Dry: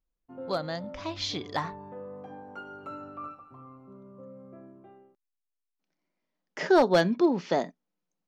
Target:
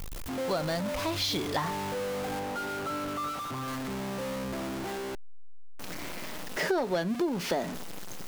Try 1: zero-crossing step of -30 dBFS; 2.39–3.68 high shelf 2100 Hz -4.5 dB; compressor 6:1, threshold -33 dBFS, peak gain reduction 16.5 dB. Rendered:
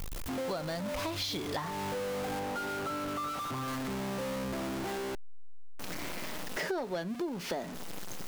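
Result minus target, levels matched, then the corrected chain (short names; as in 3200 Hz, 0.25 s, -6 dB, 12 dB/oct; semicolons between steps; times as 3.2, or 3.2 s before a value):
compressor: peak gain reduction +6 dB
zero-crossing step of -30 dBFS; 2.39–3.68 high shelf 2100 Hz -4.5 dB; compressor 6:1, threshold -25.5 dBFS, peak gain reduction 10 dB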